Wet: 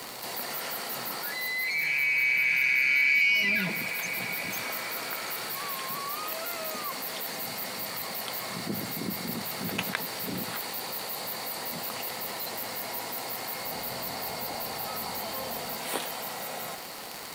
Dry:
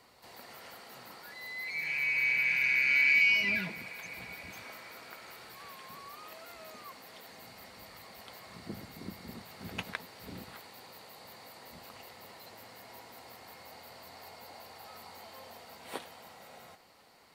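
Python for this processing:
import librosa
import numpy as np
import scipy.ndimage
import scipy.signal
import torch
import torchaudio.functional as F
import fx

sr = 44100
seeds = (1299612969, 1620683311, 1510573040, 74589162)

y = scipy.signal.sosfilt(scipy.signal.butter(4, 120.0, 'highpass', fs=sr, output='sos'), x)
y = fx.high_shelf(y, sr, hz=7500.0, db=10.5)
y = fx.dmg_crackle(y, sr, seeds[0], per_s=100.0, level_db=-44.0)
y = fx.low_shelf(y, sr, hz=200.0, db=10.5, at=(13.65, 15.77))
y = fx.env_flatten(y, sr, amount_pct=50)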